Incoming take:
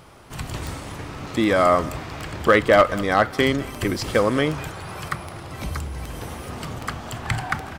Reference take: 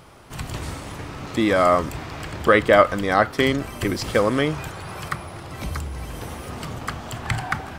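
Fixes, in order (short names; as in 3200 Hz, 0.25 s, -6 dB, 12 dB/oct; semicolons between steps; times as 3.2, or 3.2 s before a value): clip repair -6 dBFS; de-click; inverse comb 0.198 s -21 dB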